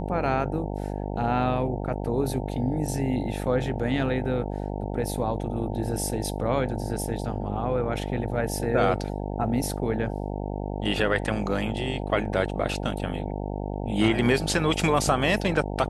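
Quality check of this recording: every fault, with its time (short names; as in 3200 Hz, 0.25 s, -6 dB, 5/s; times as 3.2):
buzz 50 Hz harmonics 18 -31 dBFS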